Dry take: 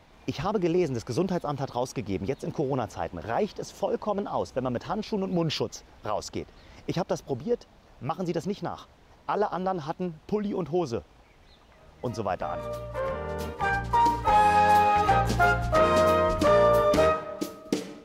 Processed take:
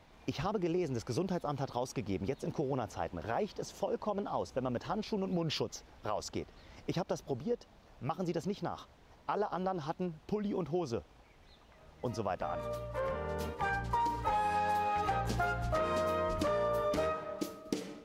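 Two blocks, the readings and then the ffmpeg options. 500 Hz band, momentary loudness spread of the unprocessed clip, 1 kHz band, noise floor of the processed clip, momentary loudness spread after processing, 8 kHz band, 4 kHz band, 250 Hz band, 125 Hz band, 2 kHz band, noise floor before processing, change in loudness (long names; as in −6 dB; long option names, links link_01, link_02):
−9.0 dB, 14 LU, −10.0 dB, −60 dBFS, 8 LU, −6.5 dB, −7.5 dB, −7.0 dB, −7.0 dB, −9.5 dB, −56 dBFS, −9.0 dB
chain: -af "acompressor=threshold=-25dB:ratio=6,volume=-4.5dB"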